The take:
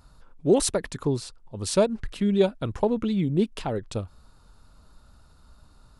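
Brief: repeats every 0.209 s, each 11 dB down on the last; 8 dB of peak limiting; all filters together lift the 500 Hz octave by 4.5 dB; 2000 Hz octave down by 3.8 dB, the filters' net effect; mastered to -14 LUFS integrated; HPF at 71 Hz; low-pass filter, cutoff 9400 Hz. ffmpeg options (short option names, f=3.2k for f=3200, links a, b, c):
-af "highpass=71,lowpass=9.4k,equalizer=f=500:t=o:g=6,equalizer=f=2k:t=o:g=-5.5,alimiter=limit=-13.5dB:level=0:latency=1,aecho=1:1:209|418|627:0.282|0.0789|0.0221,volume=11.5dB"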